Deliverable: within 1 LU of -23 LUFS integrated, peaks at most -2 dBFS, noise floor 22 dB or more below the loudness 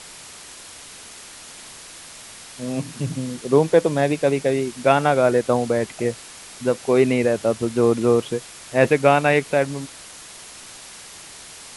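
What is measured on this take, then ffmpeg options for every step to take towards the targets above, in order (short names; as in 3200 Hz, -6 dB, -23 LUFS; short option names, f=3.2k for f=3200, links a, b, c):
noise floor -41 dBFS; noise floor target -42 dBFS; loudness -20.0 LUFS; peak -2.0 dBFS; loudness target -23.0 LUFS
-> -af "afftdn=nr=6:nf=-41"
-af "volume=-3dB"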